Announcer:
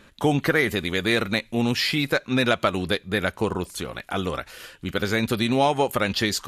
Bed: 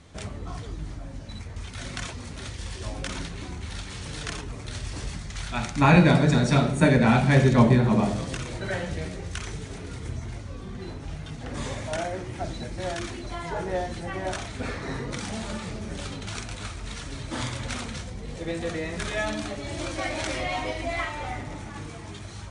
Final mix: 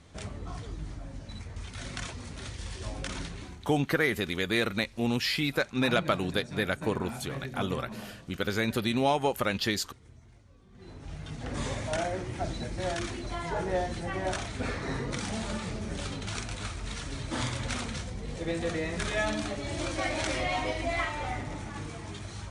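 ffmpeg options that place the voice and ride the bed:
-filter_complex "[0:a]adelay=3450,volume=0.531[s0];[1:a]volume=6.31,afade=t=out:st=3.31:d=0.4:silence=0.141254,afade=t=in:st=10.7:d=0.75:silence=0.105925[s1];[s0][s1]amix=inputs=2:normalize=0"

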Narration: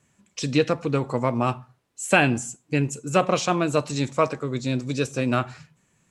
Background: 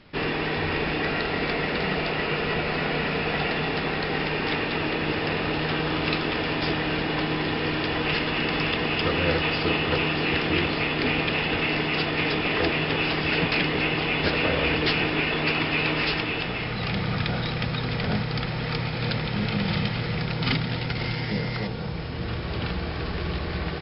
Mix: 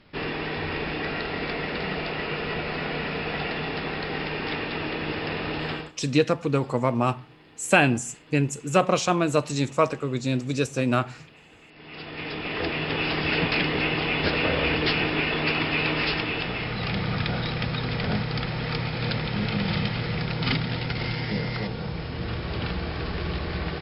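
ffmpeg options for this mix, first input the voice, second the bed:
-filter_complex "[0:a]adelay=5600,volume=1[s0];[1:a]volume=14.1,afade=t=out:st=5.7:d=0.22:silence=0.0668344,afade=t=in:st=11.74:d=1.48:silence=0.0473151[s1];[s0][s1]amix=inputs=2:normalize=0"

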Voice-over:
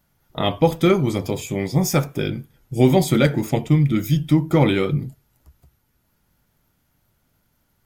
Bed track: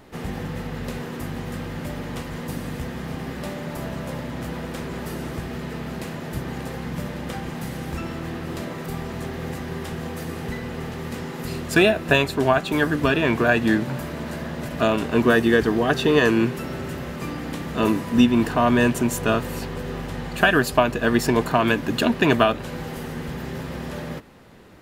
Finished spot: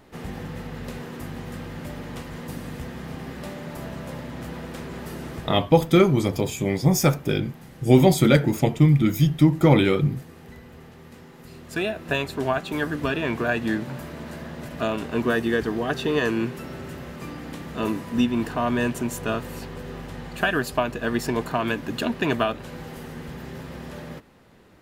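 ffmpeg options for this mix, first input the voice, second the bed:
-filter_complex "[0:a]adelay=5100,volume=1[s0];[1:a]volume=1.78,afade=t=out:st=5.38:d=0.28:silence=0.298538,afade=t=in:st=11.52:d=0.85:silence=0.354813[s1];[s0][s1]amix=inputs=2:normalize=0"

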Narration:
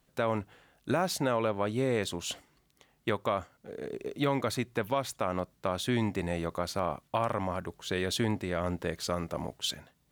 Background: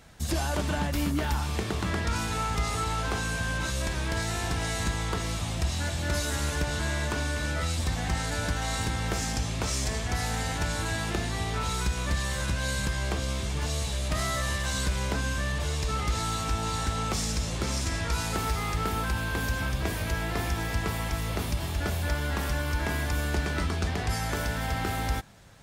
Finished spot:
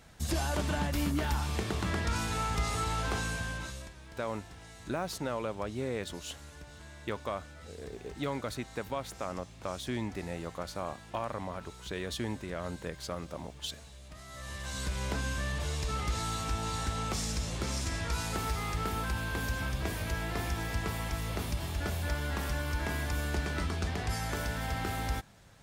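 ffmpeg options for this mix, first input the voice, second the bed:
-filter_complex "[0:a]adelay=4000,volume=0.501[s0];[1:a]volume=4.47,afade=t=out:st=3.19:d=0.74:silence=0.133352,afade=t=in:st=14.26:d=0.85:silence=0.158489[s1];[s0][s1]amix=inputs=2:normalize=0"

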